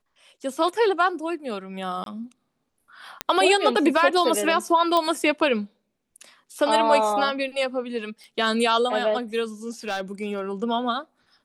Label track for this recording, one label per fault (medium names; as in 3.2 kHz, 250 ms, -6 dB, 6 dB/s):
2.040000	2.060000	dropout 22 ms
3.210000	3.210000	pop -9 dBFS
4.970000	4.970000	pop -10 dBFS
8.240000	8.240000	pop
9.880000	10.410000	clipped -21.5 dBFS